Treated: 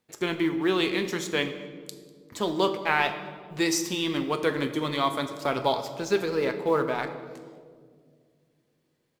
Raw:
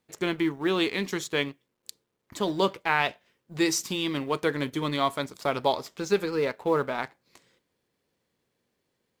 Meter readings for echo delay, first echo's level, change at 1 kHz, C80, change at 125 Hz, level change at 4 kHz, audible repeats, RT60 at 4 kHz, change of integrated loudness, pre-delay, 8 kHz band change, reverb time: 197 ms, -22.5 dB, +0.5 dB, 11.5 dB, -0.5 dB, +1.0 dB, 1, 1.1 s, +0.5 dB, 8 ms, +0.5 dB, 2.0 s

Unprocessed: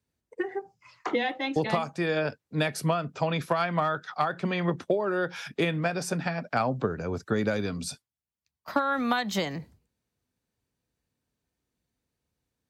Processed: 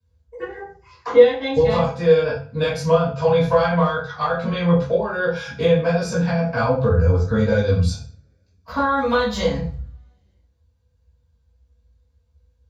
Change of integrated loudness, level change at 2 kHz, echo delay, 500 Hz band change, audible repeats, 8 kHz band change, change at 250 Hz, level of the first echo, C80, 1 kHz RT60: +9.5 dB, +5.0 dB, no echo, +12.5 dB, no echo, +1.0 dB, +7.0 dB, no echo, 9.0 dB, 0.40 s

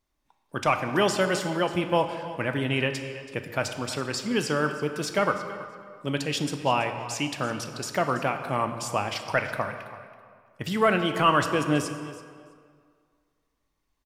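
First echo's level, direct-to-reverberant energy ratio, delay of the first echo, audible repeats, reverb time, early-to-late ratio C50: -16.0 dB, 6.5 dB, 329 ms, 2, 2.0 s, 8.0 dB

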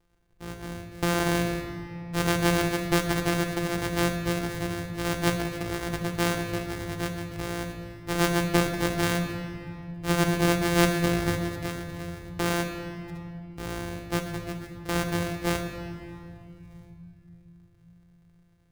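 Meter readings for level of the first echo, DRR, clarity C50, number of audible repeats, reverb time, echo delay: no echo, 3.0 dB, 5.5 dB, no echo, 2.6 s, no echo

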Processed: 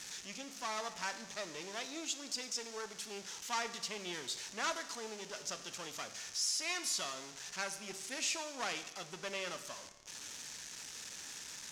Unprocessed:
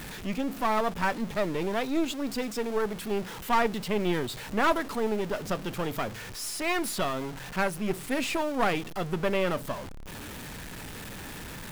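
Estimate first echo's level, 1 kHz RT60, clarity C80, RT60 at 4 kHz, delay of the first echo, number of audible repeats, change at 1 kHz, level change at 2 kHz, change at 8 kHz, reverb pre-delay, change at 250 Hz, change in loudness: no echo, 1.1 s, 13.5 dB, 1.0 s, no echo, no echo, -13.5 dB, -9.5 dB, +2.0 dB, 10 ms, -20.5 dB, -10.0 dB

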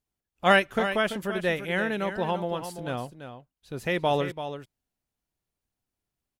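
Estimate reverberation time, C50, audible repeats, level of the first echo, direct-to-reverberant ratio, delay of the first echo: no reverb, no reverb, 1, -10.0 dB, no reverb, 337 ms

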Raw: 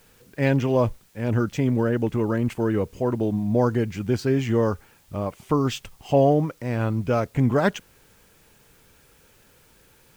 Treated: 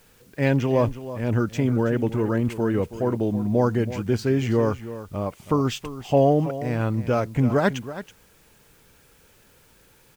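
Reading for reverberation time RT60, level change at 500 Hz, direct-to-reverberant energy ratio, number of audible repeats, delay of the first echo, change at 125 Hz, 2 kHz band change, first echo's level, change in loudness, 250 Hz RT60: no reverb, 0.0 dB, no reverb, 1, 326 ms, 0.0 dB, 0.0 dB, -13.5 dB, 0.0 dB, no reverb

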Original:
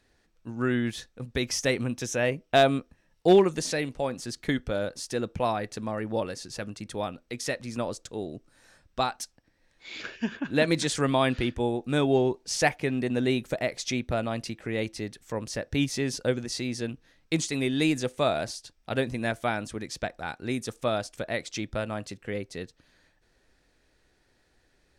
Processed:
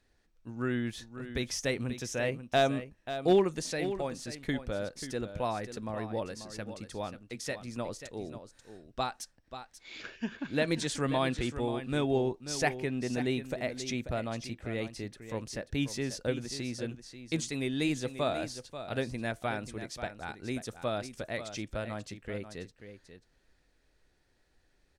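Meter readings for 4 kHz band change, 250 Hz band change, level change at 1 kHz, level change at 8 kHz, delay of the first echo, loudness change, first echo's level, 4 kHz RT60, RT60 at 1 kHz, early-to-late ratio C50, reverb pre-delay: -5.5 dB, -5.5 dB, -5.5 dB, -5.5 dB, 537 ms, -5.5 dB, -11.0 dB, no reverb, no reverb, no reverb, no reverb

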